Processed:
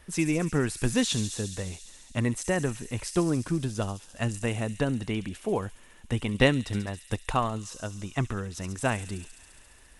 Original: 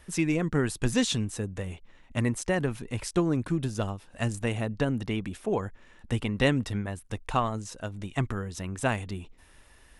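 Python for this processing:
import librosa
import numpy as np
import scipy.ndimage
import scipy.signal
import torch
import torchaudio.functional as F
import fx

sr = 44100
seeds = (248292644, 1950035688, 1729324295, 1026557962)

y = fx.echo_wet_highpass(x, sr, ms=69, feedback_pct=84, hz=5200.0, wet_db=-5)
y = fx.transient(y, sr, attack_db=5, sustain_db=-2, at=(6.34, 7.33))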